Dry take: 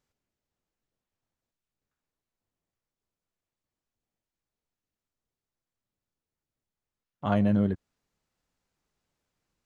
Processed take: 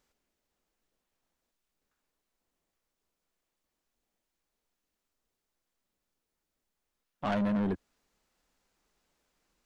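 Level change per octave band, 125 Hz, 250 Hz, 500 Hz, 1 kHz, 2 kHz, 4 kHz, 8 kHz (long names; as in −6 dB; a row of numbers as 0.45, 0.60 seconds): −8.5 dB, −4.5 dB, −3.5 dB, −2.0 dB, 0.0 dB, +0.5 dB, can't be measured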